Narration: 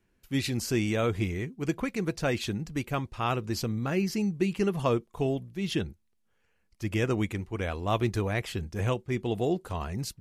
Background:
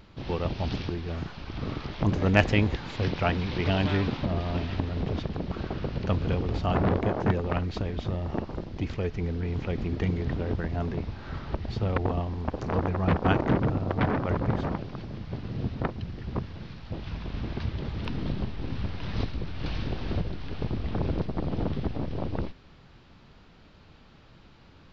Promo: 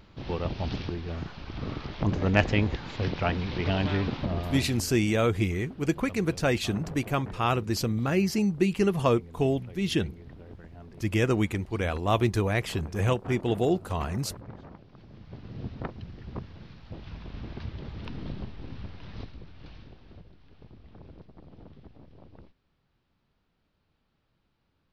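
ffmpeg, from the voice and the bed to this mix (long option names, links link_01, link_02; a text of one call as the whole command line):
ffmpeg -i stem1.wav -i stem2.wav -filter_complex "[0:a]adelay=4200,volume=3dB[link_01];[1:a]volume=9.5dB,afade=type=out:start_time=4.37:duration=0.61:silence=0.16788,afade=type=in:start_time=14.85:duration=0.8:silence=0.281838,afade=type=out:start_time=18.34:duration=1.68:silence=0.188365[link_02];[link_01][link_02]amix=inputs=2:normalize=0" out.wav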